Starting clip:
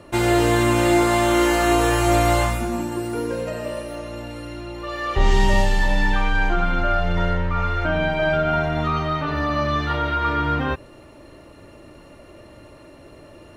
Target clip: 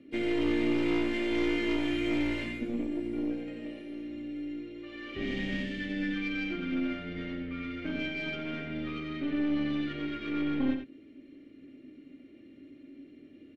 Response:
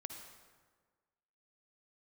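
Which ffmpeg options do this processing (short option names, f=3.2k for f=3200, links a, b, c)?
-filter_complex "[0:a]asplit=2[a][b];[b]adynamicsmooth=sensitivity=2:basefreq=1.6k,volume=-2.5dB[c];[a][c]amix=inputs=2:normalize=0,asplit=3[d][e][f];[d]bandpass=f=270:t=q:w=8,volume=0dB[g];[e]bandpass=f=2.29k:t=q:w=8,volume=-6dB[h];[f]bandpass=f=3.01k:t=q:w=8,volume=-9dB[i];[g][h][i]amix=inputs=3:normalize=0,aeval=exprs='0.188*(cos(1*acos(clip(val(0)/0.188,-1,1)))-cos(1*PI/2))+0.0188*(cos(5*acos(clip(val(0)/0.188,-1,1)))-cos(5*PI/2))+0.0168*(cos(6*acos(clip(val(0)/0.188,-1,1)))-cos(6*PI/2))':c=same,asplit=2[j][k];[k]asetrate=58866,aresample=44100,atempo=0.749154,volume=-16dB[l];[j][l]amix=inputs=2:normalize=0,aecho=1:1:88:0.422,volume=-4.5dB"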